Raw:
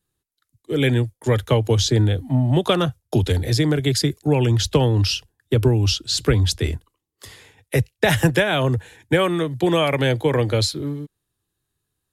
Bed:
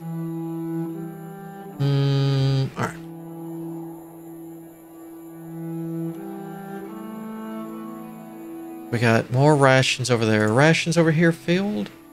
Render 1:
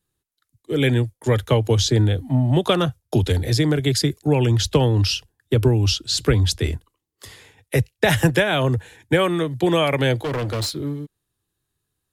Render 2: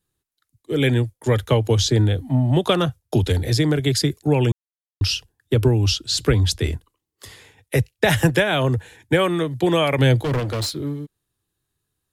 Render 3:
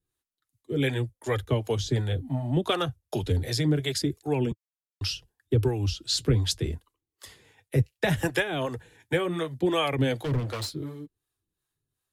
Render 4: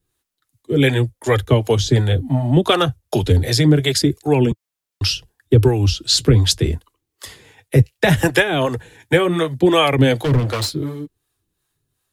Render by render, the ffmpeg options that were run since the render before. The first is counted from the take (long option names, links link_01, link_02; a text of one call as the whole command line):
ffmpeg -i in.wav -filter_complex "[0:a]asettb=1/sr,asplit=3[link_01][link_02][link_03];[link_01]atrim=end=10.244[link_04];[link_02]atrim=start=10.24:end=10.76,asetpts=PTS-STARTPTS,afade=type=in:duration=0.004:curve=qsin,afade=type=out:start_time=0.516:duration=0.004:curve=qsin,asoftclip=type=hard:threshold=-22dB[link_05];[link_03]atrim=start=10.756[link_06];[link_04][link_05]acrossfade=duration=0.004:curve1=hsin:curve2=qsin[link_07];[link_07][link_06]acrossfade=duration=0.004:curve1=qsin:curve2=hsin" out.wav
ffmpeg -i in.wav -filter_complex "[0:a]asettb=1/sr,asplit=3[link_01][link_02][link_03];[link_01]atrim=end=9.984[link_04];[link_02]atrim=start=9.98:end=10.4,asetpts=PTS-STARTPTS,afade=type=in:duration=0.004:curve=qsin,afade=type=out:start_time=0.416:duration=0.004:curve=qsin,bass=frequency=250:gain=7,treble=frequency=4000:gain=2[link_05];[link_03]atrim=start=10.396[link_06];[link_04][link_05]acrossfade=duration=0.004:curve1=hsin:curve2=qsin[link_07];[link_07][link_06]acrossfade=duration=0.004:curve1=qsin:curve2=hsin,asplit=3[link_08][link_09][link_10];[link_08]atrim=end=4.52,asetpts=PTS-STARTPTS,afade=type=out:start_time=4.516:duration=0.004:curve=hsin[link_11];[link_09]atrim=start=4.52:end=5.01,asetpts=PTS-STARTPTS,volume=0[link_12];[link_10]atrim=start=5.01,asetpts=PTS-STARTPTS,afade=type=in:duration=0.004:curve=hsin[link_13];[link_11][link_12][link_13]concat=n=3:v=0:a=1" out.wav
ffmpeg -i in.wav -filter_complex "[0:a]acrossover=split=470[link_01][link_02];[link_01]aeval=exprs='val(0)*(1-0.7/2+0.7/2*cos(2*PI*2.7*n/s))':channel_layout=same[link_03];[link_02]aeval=exprs='val(0)*(1-0.7/2-0.7/2*cos(2*PI*2.7*n/s))':channel_layout=same[link_04];[link_03][link_04]amix=inputs=2:normalize=0,flanger=delay=2.4:depth=5.7:regen=-41:speed=0.71:shape=sinusoidal" out.wav
ffmpeg -i in.wav -af "volume=11dB,alimiter=limit=-2dB:level=0:latency=1" out.wav